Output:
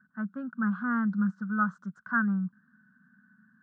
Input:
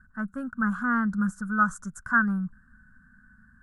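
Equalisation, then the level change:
elliptic band-pass filter 180–4,000 Hz, stop band 50 dB
low-shelf EQ 230 Hz +8.5 dB
−5.5 dB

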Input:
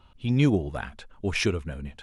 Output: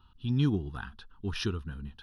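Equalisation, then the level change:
phaser with its sweep stopped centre 2,200 Hz, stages 6
−3.5 dB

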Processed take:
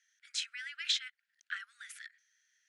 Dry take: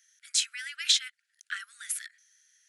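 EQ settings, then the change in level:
high-pass filter 1,400 Hz 12 dB per octave
high-frequency loss of the air 76 metres
high-shelf EQ 2,300 Hz −11 dB
+2.5 dB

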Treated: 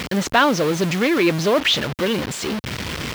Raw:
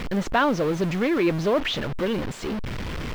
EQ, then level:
high-pass filter 78 Hz 12 dB per octave
high-shelf EQ 2,500 Hz +10.5 dB
+3.5 dB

